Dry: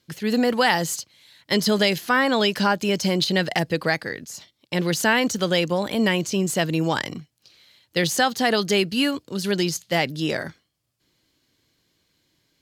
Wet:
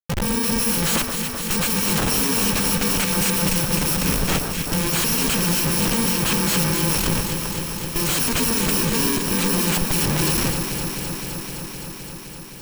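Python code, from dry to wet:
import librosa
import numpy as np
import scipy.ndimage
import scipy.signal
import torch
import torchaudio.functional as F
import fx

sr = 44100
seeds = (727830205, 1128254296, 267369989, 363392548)

y = fx.bit_reversed(x, sr, seeds[0], block=64)
y = fx.schmitt(y, sr, flips_db=-33.5)
y = fx.echo_alternate(y, sr, ms=129, hz=1600.0, feedback_pct=90, wet_db=-6)
y = y * librosa.db_to_amplitude(2.0)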